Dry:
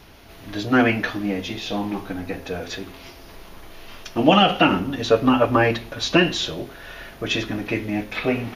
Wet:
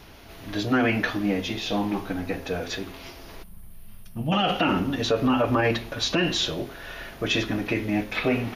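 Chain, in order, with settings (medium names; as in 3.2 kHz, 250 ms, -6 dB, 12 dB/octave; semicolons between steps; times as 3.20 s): time-frequency box 3.43–4.33 s, 230–8400 Hz -19 dB; peak limiter -13 dBFS, peak gain reduction 11 dB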